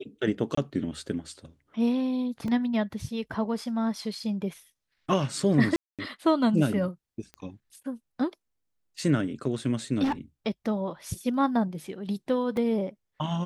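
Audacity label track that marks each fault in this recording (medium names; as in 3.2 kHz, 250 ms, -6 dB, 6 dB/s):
0.550000	0.570000	dropout 24 ms
2.480000	2.480000	dropout 2 ms
5.760000	5.990000	dropout 227 ms
7.340000	7.340000	pop -28 dBFS
10.030000	10.130000	clipped -23 dBFS
12.570000	12.570000	dropout 2.5 ms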